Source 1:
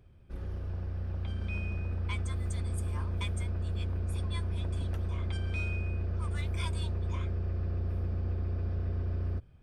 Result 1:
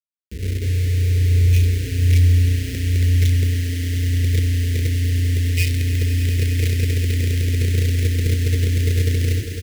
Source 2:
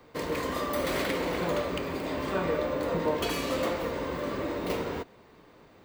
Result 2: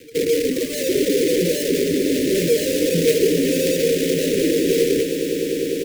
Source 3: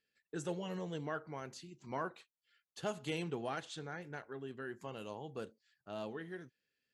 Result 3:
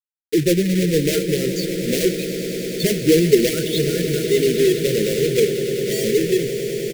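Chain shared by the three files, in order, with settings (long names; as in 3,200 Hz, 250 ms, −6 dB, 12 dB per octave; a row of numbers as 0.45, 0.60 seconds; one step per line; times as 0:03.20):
expanding power law on the bin magnitudes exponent 3
treble cut that deepens with the level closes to 1,100 Hz, closed at −27 dBFS
in parallel at −11 dB: wrap-around overflow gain 26 dB
on the sum: high-pass filter 110 Hz 24 dB per octave
parametric band 510 Hz +7 dB 1.3 octaves
multiband delay without the direct sound lows, highs 30 ms, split 1,600 Hz
log-companded quantiser 4 bits
Chebyshev band-stop filter 440–1,900 Hz, order 3
on a send: echo that builds up and dies away 101 ms, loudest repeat 8, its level −14.5 dB
on the sum: loudness normalisation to −19 LKFS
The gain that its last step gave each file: +23.0, +8.5, +20.5 decibels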